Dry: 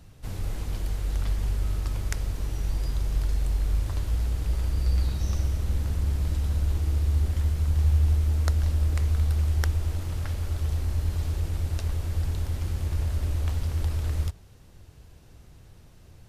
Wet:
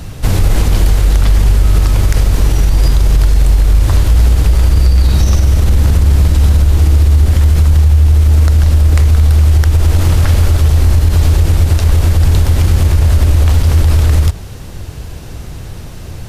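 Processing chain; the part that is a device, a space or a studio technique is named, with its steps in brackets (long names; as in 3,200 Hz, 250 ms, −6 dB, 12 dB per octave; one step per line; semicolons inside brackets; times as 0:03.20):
loud club master (downward compressor 2.5 to 1, threshold −26 dBFS, peak gain reduction 6.5 dB; hard clipping −15 dBFS, distortion −45 dB; boost into a limiter +25 dB)
level −1 dB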